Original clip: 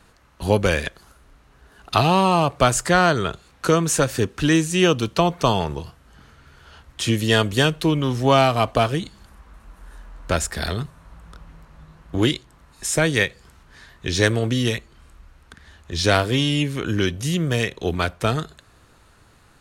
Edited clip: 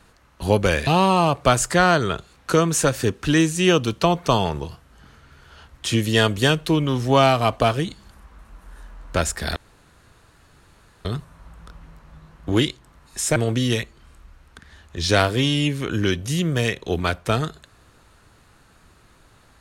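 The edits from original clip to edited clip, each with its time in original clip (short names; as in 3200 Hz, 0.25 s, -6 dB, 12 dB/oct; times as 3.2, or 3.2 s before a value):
0.87–2.02 cut
10.71 insert room tone 1.49 s
13.02–14.31 cut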